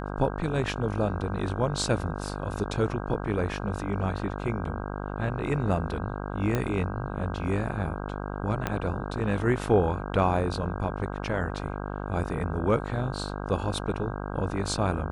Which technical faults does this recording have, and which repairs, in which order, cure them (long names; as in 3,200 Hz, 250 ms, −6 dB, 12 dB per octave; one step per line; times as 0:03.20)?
mains buzz 50 Hz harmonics 32 −34 dBFS
0:06.55: click −14 dBFS
0:08.67: click −13 dBFS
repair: click removal
hum removal 50 Hz, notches 32